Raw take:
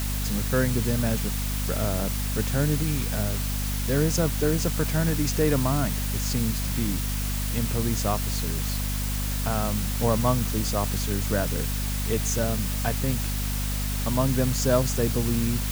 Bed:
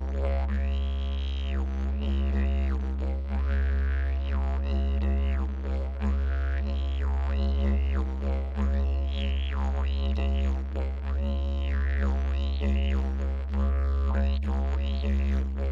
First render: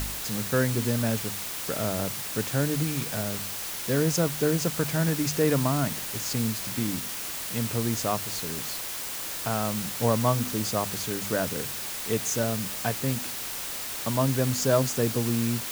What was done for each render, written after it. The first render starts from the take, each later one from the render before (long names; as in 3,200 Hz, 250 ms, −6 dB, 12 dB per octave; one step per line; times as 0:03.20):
hum removal 50 Hz, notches 5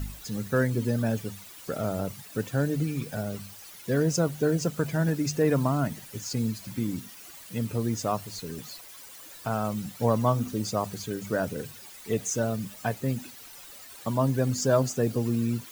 broadband denoise 15 dB, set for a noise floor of −34 dBFS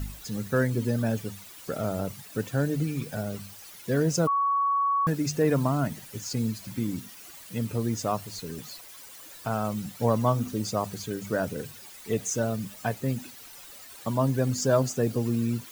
0:04.27–0:05.07: beep over 1,120 Hz −21.5 dBFS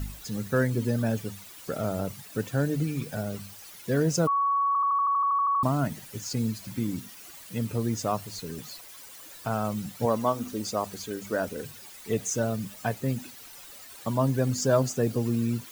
0:04.67: stutter in place 0.08 s, 12 plays
0:10.05–0:11.63: parametric band 130 Hz −13 dB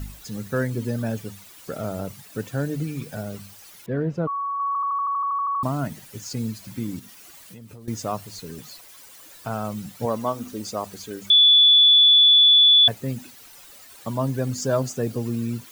0:03.86–0:04.60: high-frequency loss of the air 500 metres
0:06.99–0:07.88: downward compressor, threshold −40 dBFS
0:11.30–0:12.88: beep over 3,450 Hz −10.5 dBFS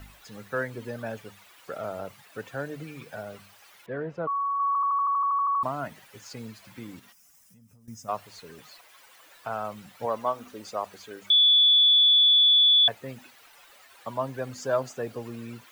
0:07.12–0:08.09: gain on a spectral selection 270–4,900 Hz −17 dB
three-way crossover with the lows and the highs turned down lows −14 dB, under 490 Hz, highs −12 dB, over 3,300 Hz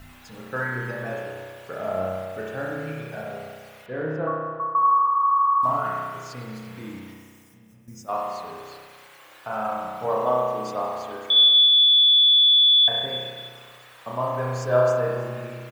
repeating echo 312 ms, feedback 28%, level −19 dB
spring reverb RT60 1.7 s, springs 32 ms, chirp 80 ms, DRR −4.5 dB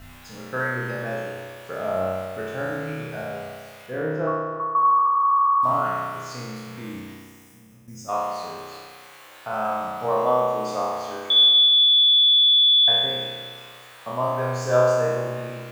peak hold with a decay on every bin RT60 1.33 s
feedback echo with a band-pass in the loop 154 ms, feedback 71%, band-pass 1,000 Hz, level −22 dB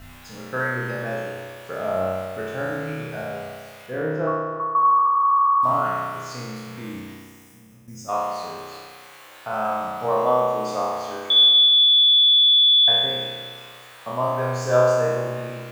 level +1 dB